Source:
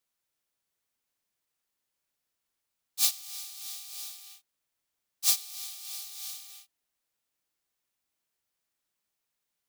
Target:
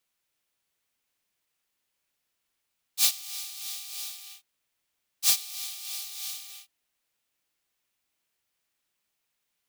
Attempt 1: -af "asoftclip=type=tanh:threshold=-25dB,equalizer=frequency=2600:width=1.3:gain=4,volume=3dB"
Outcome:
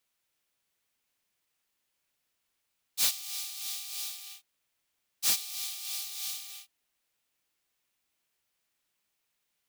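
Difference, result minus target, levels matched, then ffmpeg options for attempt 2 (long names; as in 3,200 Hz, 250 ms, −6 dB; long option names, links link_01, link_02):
soft clipping: distortion +10 dB
-af "asoftclip=type=tanh:threshold=-15.5dB,equalizer=frequency=2600:width=1.3:gain=4,volume=3dB"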